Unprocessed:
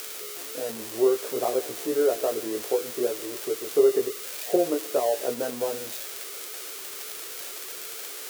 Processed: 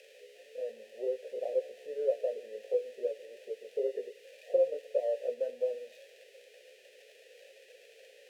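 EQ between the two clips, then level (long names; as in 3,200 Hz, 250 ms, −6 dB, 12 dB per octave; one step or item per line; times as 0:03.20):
formant filter e
high-pass filter 120 Hz
phaser with its sweep stopped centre 320 Hz, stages 6
0.0 dB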